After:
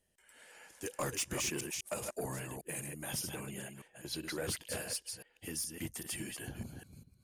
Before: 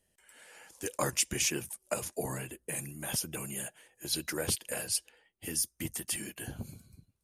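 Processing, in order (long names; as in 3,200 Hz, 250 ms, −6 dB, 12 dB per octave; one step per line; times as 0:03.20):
delay that plays each chunk backwards 201 ms, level −6 dB
high-shelf EQ 5,600 Hz −2.5 dB, from 0:03.34 −11 dB, from 0:04.44 −5 dB
soft clipping −26.5 dBFS, distortion −14 dB
level −2.5 dB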